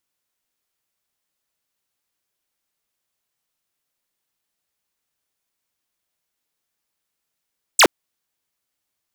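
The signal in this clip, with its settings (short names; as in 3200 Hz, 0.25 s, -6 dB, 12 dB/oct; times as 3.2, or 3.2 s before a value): laser zap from 9400 Hz, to 250 Hz, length 0.07 s square, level -10 dB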